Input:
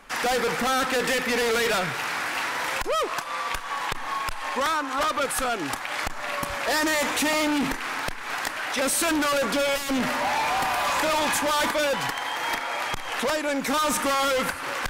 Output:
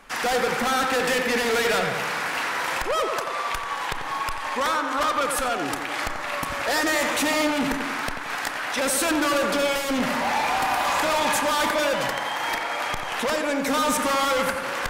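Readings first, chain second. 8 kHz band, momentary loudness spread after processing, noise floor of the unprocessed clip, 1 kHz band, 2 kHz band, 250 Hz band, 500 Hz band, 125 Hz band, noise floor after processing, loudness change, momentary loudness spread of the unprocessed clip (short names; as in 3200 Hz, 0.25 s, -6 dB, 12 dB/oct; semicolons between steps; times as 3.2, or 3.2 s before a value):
0.0 dB, 6 LU, -34 dBFS, +1.5 dB, +1.0 dB, +1.0 dB, +1.5 dB, +1.0 dB, -30 dBFS, +1.0 dB, 7 LU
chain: tape echo 89 ms, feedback 74%, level -4.5 dB, low-pass 2400 Hz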